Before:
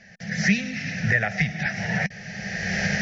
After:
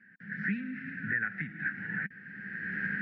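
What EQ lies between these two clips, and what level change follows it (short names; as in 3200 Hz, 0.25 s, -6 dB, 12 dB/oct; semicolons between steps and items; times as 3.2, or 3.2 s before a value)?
double band-pass 660 Hz, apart 2.4 oct; air absorption 410 m; +3.5 dB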